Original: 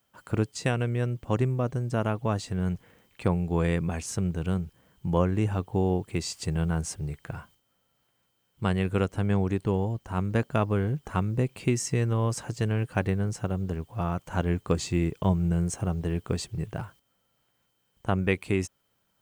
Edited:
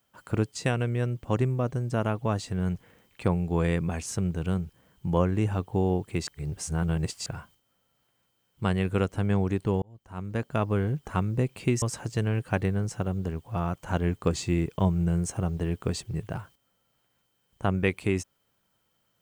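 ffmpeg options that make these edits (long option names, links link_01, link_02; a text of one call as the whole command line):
ffmpeg -i in.wav -filter_complex "[0:a]asplit=5[link_01][link_02][link_03][link_04][link_05];[link_01]atrim=end=6.272[link_06];[link_02]atrim=start=6.268:end=7.262,asetpts=PTS-STARTPTS,areverse[link_07];[link_03]atrim=start=7.258:end=9.82,asetpts=PTS-STARTPTS,afade=type=out:start_time=2.558:duration=0.004:curve=hsin[link_08];[link_04]atrim=start=9.82:end=11.822,asetpts=PTS-STARTPTS,afade=type=in:duration=0.93[link_09];[link_05]atrim=start=12.258[link_10];[link_06][link_07]acrossfade=duration=0.004:curve1=hsin:curve2=hsin[link_11];[link_08][link_09]concat=n=2:v=0:a=1[link_12];[link_11][link_12]acrossfade=duration=0.004:curve1=hsin:curve2=hsin[link_13];[link_13][link_10]acrossfade=duration=0.004:curve1=hsin:curve2=hsin" out.wav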